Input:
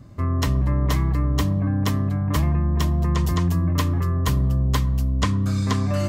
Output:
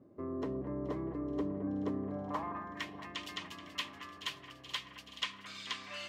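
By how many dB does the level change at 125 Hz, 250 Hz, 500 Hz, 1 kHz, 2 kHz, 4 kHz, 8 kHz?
-29.0 dB, -14.5 dB, -9.5 dB, -13.0 dB, -9.0 dB, -6.5 dB, -17.0 dB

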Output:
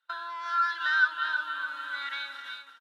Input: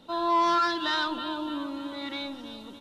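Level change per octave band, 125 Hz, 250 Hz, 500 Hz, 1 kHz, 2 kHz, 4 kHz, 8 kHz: under -40 dB, under -30 dB, under -20 dB, -5.0 dB, +8.5 dB, -5.0 dB, no reading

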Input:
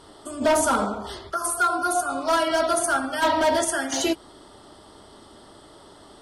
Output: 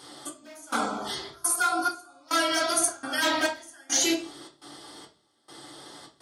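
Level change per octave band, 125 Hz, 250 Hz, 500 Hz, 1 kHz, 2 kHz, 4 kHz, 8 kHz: -9.0 dB, -4.5 dB, -9.5 dB, -6.5 dB, -2.0 dB, +2.0 dB, +1.0 dB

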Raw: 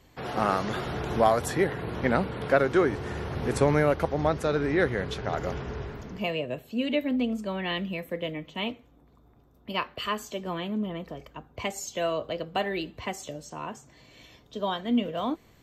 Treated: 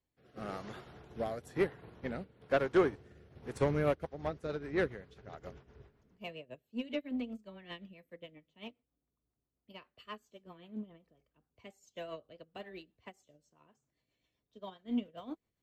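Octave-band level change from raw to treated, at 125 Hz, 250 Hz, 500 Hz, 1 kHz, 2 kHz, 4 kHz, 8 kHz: -11.5 dB, -10.5 dB, -9.5 dB, -14.5 dB, -11.5 dB, -15.5 dB, under -20 dB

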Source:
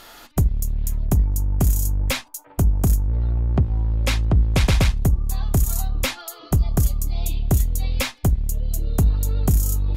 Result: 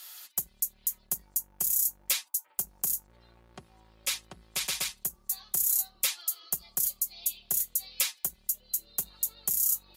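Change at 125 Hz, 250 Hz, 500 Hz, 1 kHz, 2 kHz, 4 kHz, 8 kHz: -37.5 dB, -28.5 dB, -21.5 dB, -15.5 dB, -9.5 dB, -4.0 dB, +2.0 dB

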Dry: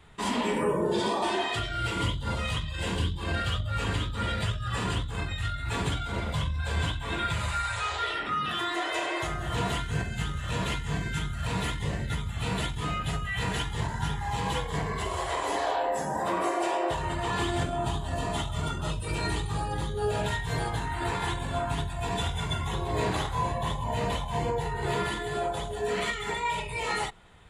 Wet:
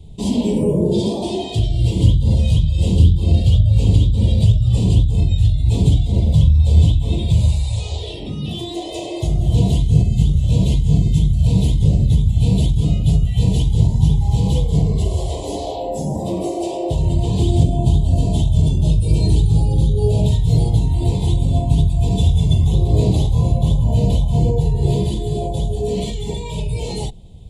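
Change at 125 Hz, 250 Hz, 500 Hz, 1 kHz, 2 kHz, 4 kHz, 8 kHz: +18.0 dB, +14.0 dB, +7.0 dB, -3.5 dB, under -10 dB, +3.0 dB, +4.5 dB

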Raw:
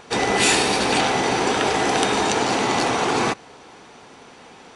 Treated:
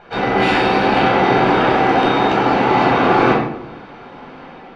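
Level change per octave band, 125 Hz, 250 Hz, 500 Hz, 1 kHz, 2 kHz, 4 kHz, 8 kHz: +8.5 dB, +7.5 dB, +6.5 dB, +7.0 dB, +4.0 dB, -2.0 dB, under -15 dB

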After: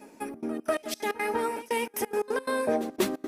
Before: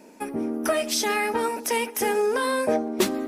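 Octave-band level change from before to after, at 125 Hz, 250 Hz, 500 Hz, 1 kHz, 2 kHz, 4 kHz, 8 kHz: no reading, -5.0 dB, -4.5 dB, -5.0 dB, -6.0 dB, -9.0 dB, -9.5 dB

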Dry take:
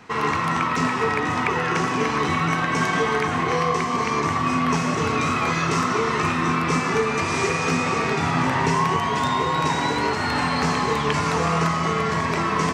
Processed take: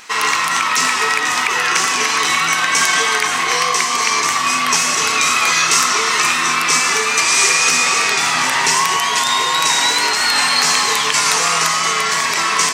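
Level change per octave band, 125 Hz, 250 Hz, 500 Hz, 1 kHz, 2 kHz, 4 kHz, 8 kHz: -12.5 dB, -8.0 dB, -2.5 dB, +4.5 dB, +10.0 dB, +15.5 dB, +20.0 dB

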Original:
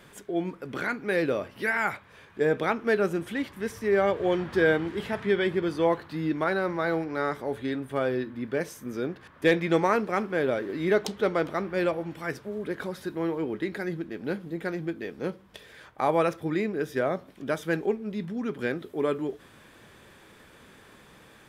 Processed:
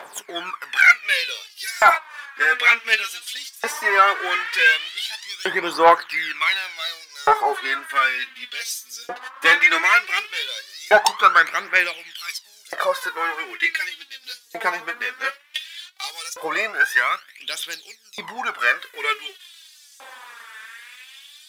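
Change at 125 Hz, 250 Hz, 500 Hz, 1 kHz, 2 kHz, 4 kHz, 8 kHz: under -15 dB, -11.5 dB, -1.5 dB, +12.0 dB, +14.5 dB, +17.0 dB, +16.5 dB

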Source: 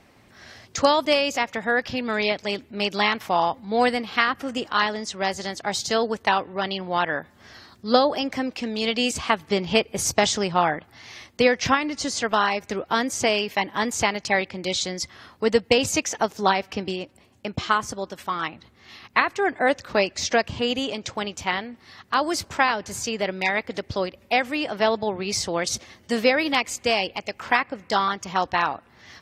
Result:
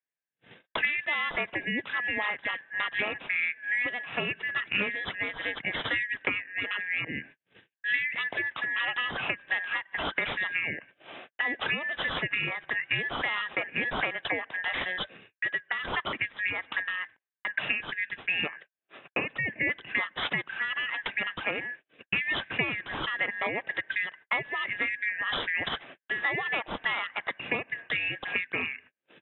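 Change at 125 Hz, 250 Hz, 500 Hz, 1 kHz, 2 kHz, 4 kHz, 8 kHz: -8.0 dB, -14.0 dB, -16.0 dB, -13.5 dB, -0.5 dB, -8.0 dB, under -40 dB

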